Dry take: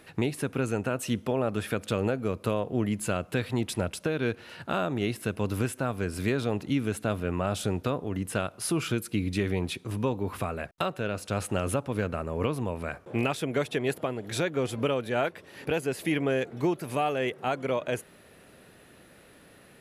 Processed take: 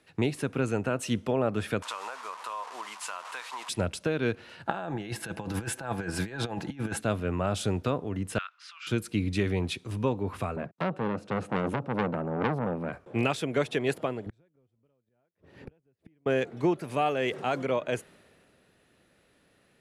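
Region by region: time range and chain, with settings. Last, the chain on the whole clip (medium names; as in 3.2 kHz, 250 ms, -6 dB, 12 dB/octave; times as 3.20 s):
1.82–3.69 s: one-bit delta coder 64 kbps, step -35.5 dBFS + resonant high-pass 1 kHz, resonance Q 5.8 + compression, threshold -30 dBFS
4.66–7.01 s: comb 6 ms, depth 41% + compressor with a negative ratio -32 dBFS, ratio -0.5 + small resonant body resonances 830/1600 Hz, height 12 dB, ringing for 20 ms
8.38–8.87 s: steep high-pass 1.2 kHz + distance through air 180 m
10.56–12.93 s: high-pass 150 Hz 24 dB/octave + tilt EQ -4 dB/octave + transformer saturation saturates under 1.3 kHz
14.26–16.26 s: tilt EQ -3 dB/octave + inverted gate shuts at -24 dBFS, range -37 dB
17.18–17.65 s: Chebyshev low-pass 8.2 kHz + modulation noise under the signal 33 dB + level flattener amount 50%
whole clip: low-pass 9.2 kHz 12 dB/octave; three bands expanded up and down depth 40%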